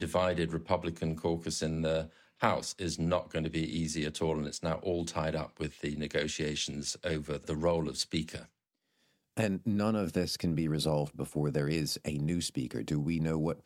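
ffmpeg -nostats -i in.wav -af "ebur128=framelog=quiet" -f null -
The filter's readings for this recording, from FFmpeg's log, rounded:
Integrated loudness:
  I:         -33.2 LUFS
  Threshold: -43.3 LUFS
Loudness range:
  LRA:         2.4 LU
  Threshold: -53.6 LUFS
  LRA low:   -34.7 LUFS
  LRA high:  -32.3 LUFS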